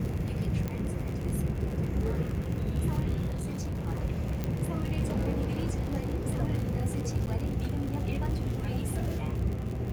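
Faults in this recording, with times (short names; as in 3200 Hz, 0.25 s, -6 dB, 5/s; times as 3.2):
crackle 63/s -33 dBFS
0.68 pop -20 dBFS
3.26–3.87 clipped -30 dBFS
4.44 pop -18 dBFS
7.26–7.27 gap 9.7 ms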